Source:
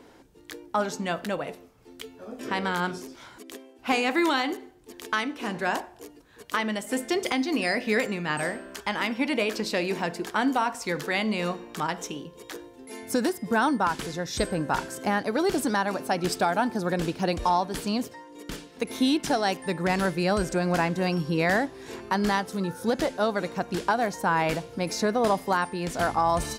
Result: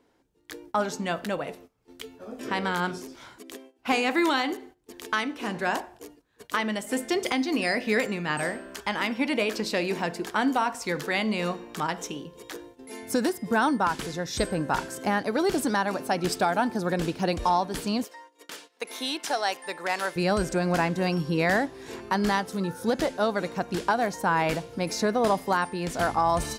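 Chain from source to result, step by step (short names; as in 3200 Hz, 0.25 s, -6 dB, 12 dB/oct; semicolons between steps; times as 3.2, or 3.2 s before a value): 18.04–20.16 HPF 590 Hz 12 dB/oct; gate -48 dBFS, range -14 dB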